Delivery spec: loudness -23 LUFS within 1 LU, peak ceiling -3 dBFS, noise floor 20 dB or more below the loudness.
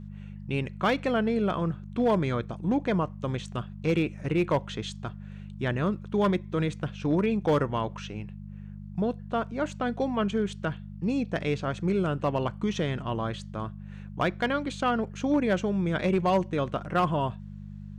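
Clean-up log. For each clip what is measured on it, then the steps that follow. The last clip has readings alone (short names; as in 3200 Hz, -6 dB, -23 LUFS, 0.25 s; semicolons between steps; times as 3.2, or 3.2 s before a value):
clipped 0.4%; flat tops at -17.5 dBFS; hum 50 Hz; harmonics up to 200 Hz; hum level -39 dBFS; loudness -28.5 LUFS; peak -17.5 dBFS; loudness target -23.0 LUFS
-> clip repair -17.5 dBFS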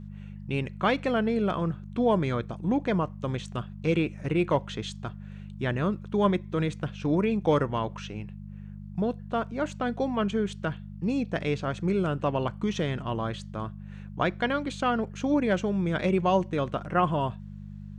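clipped 0.0%; hum 50 Hz; harmonics up to 200 Hz; hum level -39 dBFS
-> de-hum 50 Hz, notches 4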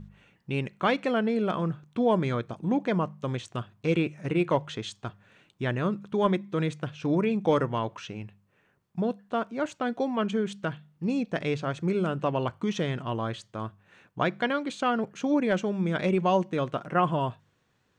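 hum none; loudness -28.5 LUFS; peak -11.0 dBFS; loudness target -23.0 LUFS
-> gain +5.5 dB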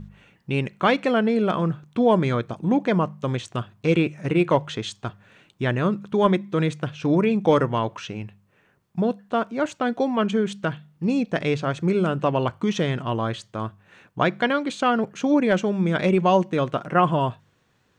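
loudness -23.0 LUFS; peak -5.5 dBFS; noise floor -64 dBFS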